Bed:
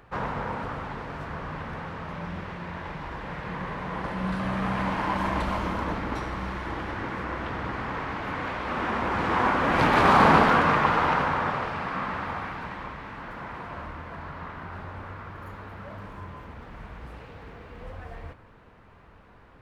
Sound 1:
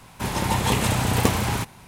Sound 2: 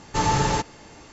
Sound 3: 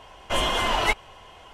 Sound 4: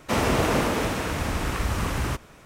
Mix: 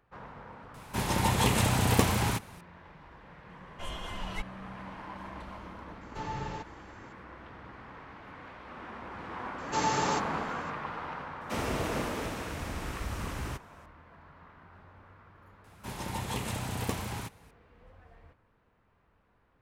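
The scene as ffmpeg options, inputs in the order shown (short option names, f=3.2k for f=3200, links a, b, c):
-filter_complex "[1:a]asplit=2[a][b];[2:a]asplit=2[c][d];[0:a]volume=-16dB[e];[3:a]asubboost=boost=9:cutoff=240[f];[c]acrossover=split=3800[g][h];[h]acompressor=threshold=-47dB:ratio=4:attack=1:release=60[i];[g][i]amix=inputs=2:normalize=0[j];[d]highpass=200[k];[a]atrim=end=1.87,asetpts=PTS-STARTPTS,volume=-4dB,afade=t=in:d=0.004:c=hsin,afade=t=out:st=1.866:d=0.004:c=hsin,adelay=740[l];[f]atrim=end=1.53,asetpts=PTS-STARTPTS,volume=-17.5dB,afade=t=in:d=0.004:c=hsin,afade=t=out:st=1.526:d=0.004:c=hsin,adelay=153909S[m];[j]atrim=end=1.12,asetpts=PTS-STARTPTS,volume=-15.5dB,afade=t=in:d=0.004:c=hsin,afade=t=out:st=1.116:d=0.004:c=hsin,adelay=6010[n];[k]atrim=end=1.12,asetpts=PTS-STARTPTS,volume=-6.5dB,afade=t=in:d=0.004:c=hsin,afade=t=out:st=1.116:d=0.004:c=hsin,adelay=9580[o];[4:a]atrim=end=2.45,asetpts=PTS-STARTPTS,volume=-10dB,afade=t=in:d=0.004:c=hsin,afade=t=out:st=2.446:d=0.004:c=hsin,adelay=11410[p];[b]atrim=end=1.87,asetpts=PTS-STARTPTS,volume=-13dB,afade=t=in:d=0.004:c=hsin,afade=t=out:st=1.866:d=0.004:c=hsin,adelay=15640[q];[e][l][m][n][o][p][q]amix=inputs=7:normalize=0"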